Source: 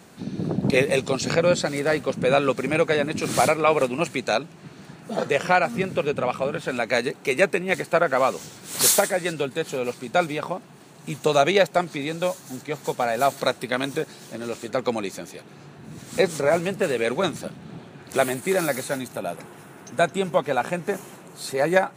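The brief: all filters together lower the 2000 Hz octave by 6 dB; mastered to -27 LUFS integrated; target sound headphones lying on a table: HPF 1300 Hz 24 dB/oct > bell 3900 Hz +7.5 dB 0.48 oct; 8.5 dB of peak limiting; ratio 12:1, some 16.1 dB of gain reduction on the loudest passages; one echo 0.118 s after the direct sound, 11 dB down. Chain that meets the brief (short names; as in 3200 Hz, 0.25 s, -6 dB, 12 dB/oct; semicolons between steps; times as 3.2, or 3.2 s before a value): bell 2000 Hz -8 dB; compressor 12:1, threshold -31 dBFS; limiter -26 dBFS; HPF 1300 Hz 24 dB/oct; bell 3900 Hz +7.5 dB 0.48 oct; echo 0.118 s -11 dB; gain +15.5 dB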